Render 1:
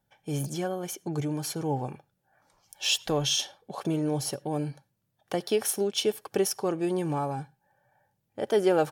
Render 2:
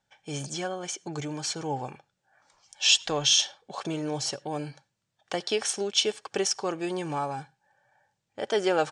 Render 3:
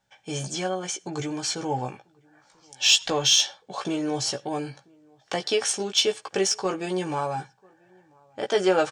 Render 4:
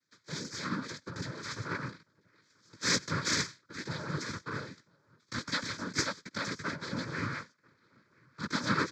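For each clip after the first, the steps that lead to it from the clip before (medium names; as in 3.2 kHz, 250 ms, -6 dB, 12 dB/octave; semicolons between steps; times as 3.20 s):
steep low-pass 8.3 kHz 48 dB/octave; tilt shelf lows -6 dB, about 690 Hz
doubling 16 ms -5 dB; echo from a far wall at 170 m, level -29 dB; in parallel at -9.5 dB: saturation -20.5 dBFS, distortion -11 dB
full-wave rectifier; noise-vocoded speech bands 8; static phaser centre 2.8 kHz, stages 6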